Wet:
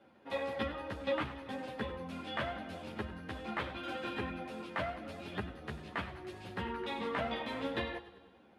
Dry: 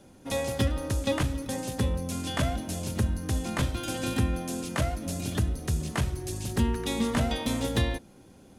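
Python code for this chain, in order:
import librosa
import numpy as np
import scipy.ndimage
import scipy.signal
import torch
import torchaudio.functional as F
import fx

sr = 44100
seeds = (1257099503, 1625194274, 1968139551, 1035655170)

y = fx.highpass(x, sr, hz=1000.0, slope=6)
y = fx.air_absorb(y, sr, metres=450.0)
y = fx.echo_feedback(y, sr, ms=97, feedback_pct=60, wet_db=-14.5)
y = fx.ensemble(y, sr)
y = y * 10.0 ** (5.0 / 20.0)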